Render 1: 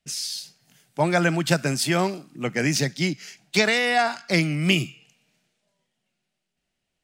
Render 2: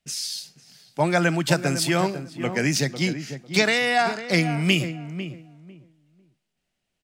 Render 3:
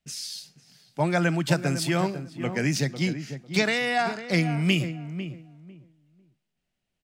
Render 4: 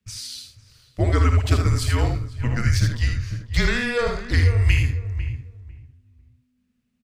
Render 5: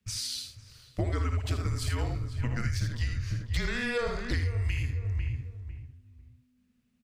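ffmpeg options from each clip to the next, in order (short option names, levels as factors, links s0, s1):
-filter_complex "[0:a]asplit=2[s0][s1];[s1]adelay=499,lowpass=f=1200:p=1,volume=0.335,asplit=2[s2][s3];[s3]adelay=499,lowpass=f=1200:p=1,volume=0.21,asplit=2[s4][s5];[s5]adelay=499,lowpass=f=1200:p=1,volume=0.21[s6];[s0][s2][s4][s6]amix=inputs=4:normalize=0"
-af "bass=f=250:g=4,treble=f=4000:g=-2,volume=0.631"
-af "lowshelf=f=220:g=10.5,afreqshift=-250,aecho=1:1:56|79:0.335|0.473"
-af "acompressor=threshold=0.0447:ratio=6"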